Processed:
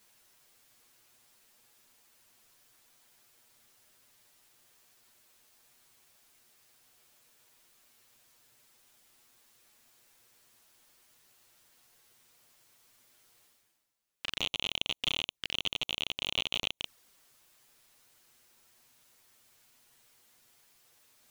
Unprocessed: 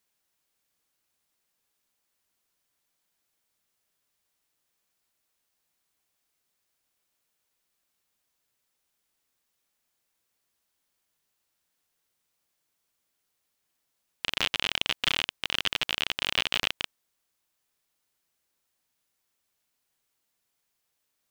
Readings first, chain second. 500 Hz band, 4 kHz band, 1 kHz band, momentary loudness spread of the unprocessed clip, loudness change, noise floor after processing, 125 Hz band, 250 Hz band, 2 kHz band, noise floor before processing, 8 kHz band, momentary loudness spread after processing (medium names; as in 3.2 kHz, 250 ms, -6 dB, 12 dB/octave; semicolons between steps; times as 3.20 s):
-5.0 dB, -4.0 dB, -9.0 dB, 6 LU, -5.0 dB, -85 dBFS, -3.5 dB, -4.0 dB, -7.5 dB, -79 dBFS, -5.0 dB, 8 LU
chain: reverse; upward compressor, threshold -40 dBFS; reverse; touch-sensitive flanger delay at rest 10 ms, full sweep at -29 dBFS; trim -3.5 dB